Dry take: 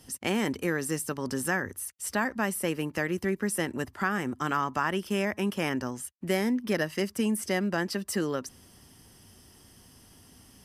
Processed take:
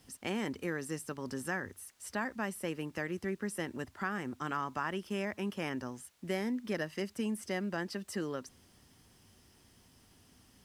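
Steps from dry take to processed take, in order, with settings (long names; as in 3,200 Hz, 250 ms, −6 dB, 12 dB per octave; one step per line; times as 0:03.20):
bit-depth reduction 10 bits, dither triangular
high-shelf EQ 11,000 Hz −11 dB
level −7.5 dB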